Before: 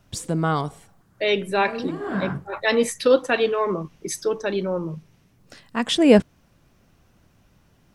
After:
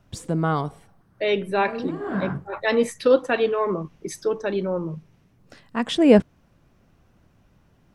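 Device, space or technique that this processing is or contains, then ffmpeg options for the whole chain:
behind a face mask: -filter_complex "[0:a]highshelf=f=2.8k:g=-8,asettb=1/sr,asplit=3[a][b][c];[a]atrim=end=0.444[d];[b]atrim=start=0.44:end=1.69,asetpts=PTS-STARTPTS,afade=t=in:d=0.004:c=qsin,afade=t=out:st=1.246:d=0.004:c=qsin,bandreject=f=7.1k:w=5.4[e];[c]atrim=start=1.686[f];[d][e]acrossfade=d=0.004:c1=hsin:c2=qsin[g];[g][f]acrossfade=d=0.004:c1=qsin:c2=hsin"

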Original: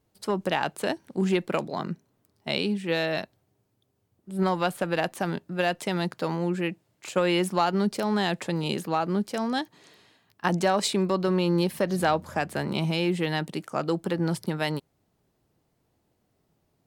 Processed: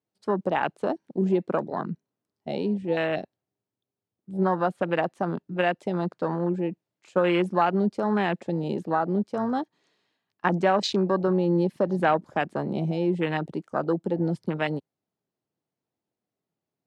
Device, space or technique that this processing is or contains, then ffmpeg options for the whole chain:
over-cleaned archive recording: -af "highpass=150,lowpass=7k,afwtdn=0.0316,volume=2dB"

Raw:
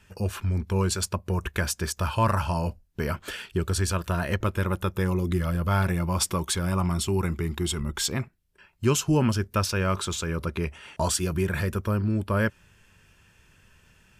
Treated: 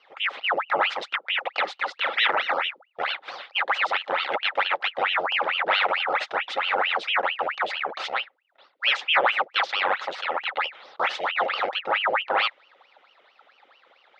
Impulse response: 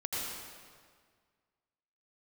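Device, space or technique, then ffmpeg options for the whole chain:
voice changer toy: -af "aeval=exprs='val(0)*sin(2*PI*1600*n/s+1600*0.85/4.5*sin(2*PI*4.5*n/s))':c=same,highpass=520,equalizer=f=540:t=q:w=4:g=9,equalizer=f=810:t=q:w=4:g=9,equalizer=f=1.3k:t=q:w=4:g=7,equalizer=f=2k:t=q:w=4:g=4,equalizer=f=3.6k:t=q:w=4:g=5,lowpass=f=4k:w=0.5412,lowpass=f=4k:w=1.3066"

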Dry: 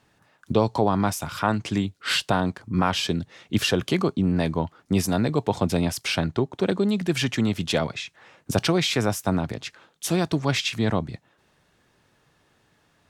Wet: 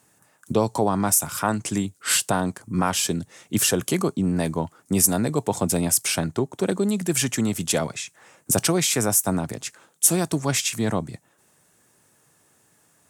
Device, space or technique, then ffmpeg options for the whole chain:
budget condenser microphone: -af "highpass=100,highshelf=f=5.8k:t=q:w=1.5:g=13.5"

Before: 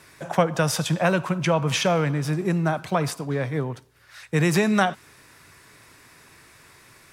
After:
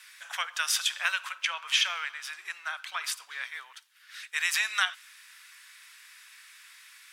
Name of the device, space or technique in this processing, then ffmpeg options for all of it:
headphones lying on a table: -filter_complex "[0:a]highpass=f=1.4k:w=0.5412,highpass=f=1.4k:w=1.3066,equalizer=f=3.2k:t=o:w=0.5:g=5.5,asettb=1/sr,asplit=3[a][b][c];[a]atrim=end=1.324[d];[b]atrim=start=1.32:end=3.04,asetpts=PTS-STARTPTS,afade=t=in:d=0.004:c=qsin,afade=t=out:st=1.716:d=0.004:c=qsin,highshelf=f=5k:g=-6[e];[c]atrim=start=3.036[f];[d][e]acrossfade=d=0.004:c1=hsin:c2=qsin[g];[g][f]acrossfade=d=0.004:c1=qsin:c2=hsin"

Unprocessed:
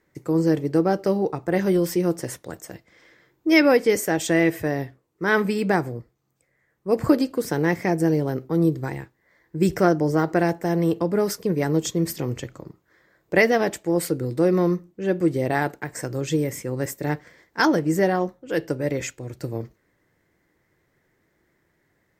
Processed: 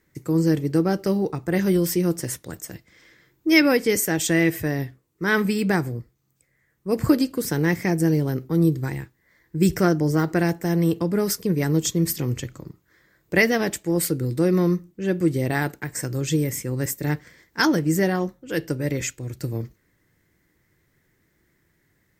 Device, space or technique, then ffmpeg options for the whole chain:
smiley-face EQ: -af "lowshelf=f=170:g=3.5,equalizer=f=670:t=o:w=1.7:g=-7.5,highshelf=f=7.7k:g=6.5,volume=2dB"

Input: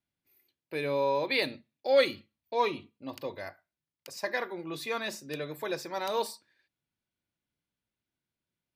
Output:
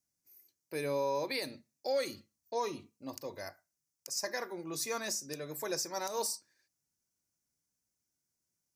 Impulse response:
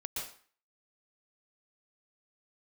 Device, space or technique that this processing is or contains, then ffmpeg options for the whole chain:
over-bright horn tweeter: -filter_complex "[0:a]highshelf=f=4.5k:t=q:w=3:g=10,alimiter=limit=-21dB:level=0:latency=1:release=188,asettb=1/sr,asplit=3[a][b][c];[a]atrim=end=2.104[d];[b]atrim=start=2.1:end=2.79,asetpts=PTS-STARTPTS,afade=t=in:d=0.004:c=qsin,afade=t=out:st=0.686:d=0.004:c=qsin,bandreject=f=2.3k:w=10[e];[c]atrim=start=2.786[f];[d][e]acrossfade=d=0.004:c1=hsin:c2=qsin[g];[g][f]acrossfade=d=0.004:c1=qsin:c2=hsin,volume=-3dB"

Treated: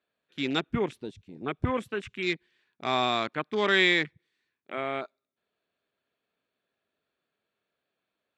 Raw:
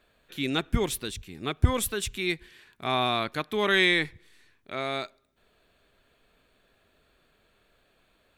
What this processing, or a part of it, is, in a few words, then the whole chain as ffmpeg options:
over-cleaned archive recording: -af "highpass=150,lowpass=5.7k,afwtdn=0.0158"

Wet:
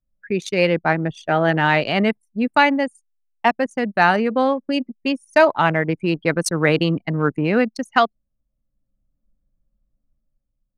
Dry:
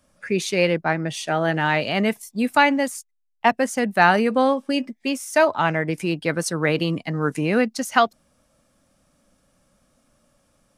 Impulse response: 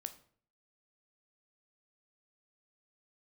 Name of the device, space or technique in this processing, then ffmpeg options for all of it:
voice memo with heavy noise removal: -af "anlmdn=251,dynaudnorm=f=150:g=9:m=6dB"

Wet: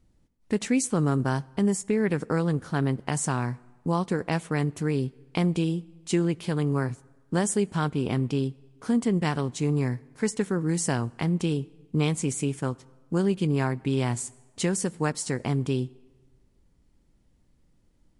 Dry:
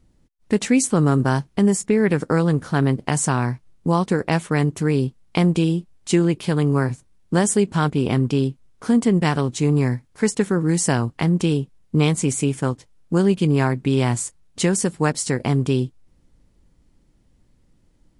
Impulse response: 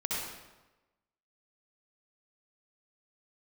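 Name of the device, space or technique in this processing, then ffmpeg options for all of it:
ducked reverb: -filter_complex "[0:a]asplit=3[a][b][c];[1:a]atrim=start_sample=2205[d];[b][d]afir=irnorm=-1:irlink=0[e];[c]apad=whole_len=802264[f];[e][f]sidechaincompress=threshold=-29dB:ratio=16:attack=16:release=1230,volume=-14dB[g];[a][g]amix=inputs=2:normalize=0,volume=-7dB"

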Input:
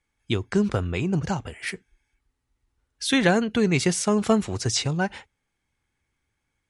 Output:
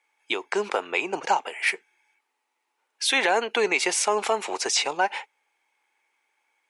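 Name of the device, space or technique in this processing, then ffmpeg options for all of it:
laptop speaker: -af "highpass=f=390:w=0.5412,highpass=f=390:w=1.3066,equalizer=f=880:t=o:w=0.54:g=10,equalizer=f=2.4k:t=o:w=0.57:g=8,alimiter=limit=-14dB:level=0:latency=1:release=115,volume=3dB"

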